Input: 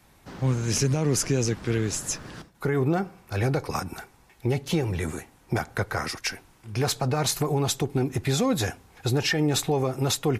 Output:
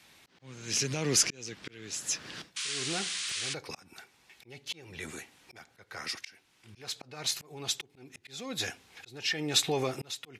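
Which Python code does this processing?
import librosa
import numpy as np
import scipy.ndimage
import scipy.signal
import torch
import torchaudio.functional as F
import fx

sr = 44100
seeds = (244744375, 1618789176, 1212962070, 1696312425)

y = fx.auto_swell(x, sr, attack_ms=734.0)
y = fx.spec_paint(y, sr, seeds[0], shape='noise', start_s=2.56, length_s=0.98, low_hz=1000.0, high_hz=10000.0, level_db=-39.0)
y = fx.weighting(y, sr, curve='D')
y = F.gain(torch.from_numpy(y), -4.5).numpy()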